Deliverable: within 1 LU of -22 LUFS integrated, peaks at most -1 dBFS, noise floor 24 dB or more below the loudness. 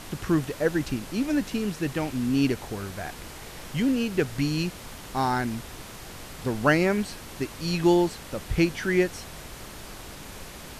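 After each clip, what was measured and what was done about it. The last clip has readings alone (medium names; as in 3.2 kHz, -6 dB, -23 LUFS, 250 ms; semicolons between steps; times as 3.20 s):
noise floor -42 dBFS; noise floor target -51 dBFS; loudness -26.5 LUFS; peak level -8.5 dBFS; loudness target -22.0 LUFS
-> noise print and reduce 9 dB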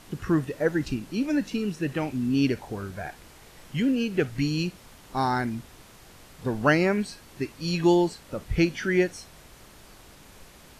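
noise floor -51 dBFS; loudness -26.5 LUFS; peak level -8.5 dBFS; loudness target -22.0 LUFS
-> trim +4.5 dB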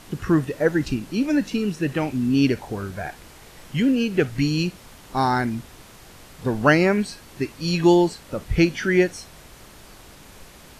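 loudness -22.0 LUFS; peak level -4.0 dBFS; noise floor -47 dBFS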